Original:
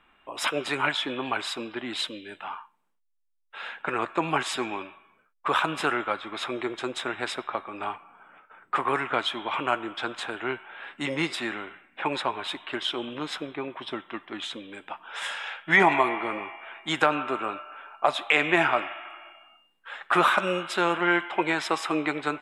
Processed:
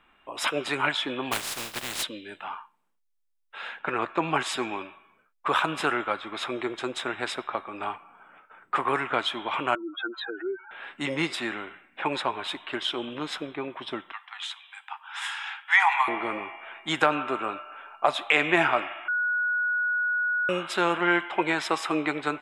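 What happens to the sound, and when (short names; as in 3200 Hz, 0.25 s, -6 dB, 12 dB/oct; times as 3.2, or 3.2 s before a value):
1.31–2.02 spectral contrast lowered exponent 0.22
3.79–4.35 LPF 5600 Hz
9.75–10.71 spectral contrast raised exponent 3.8
14.12–16.08 steep high-pass 760 Hz 96 dB/oct
19.08–20.49 bleep 1460 Hz -23 dBFS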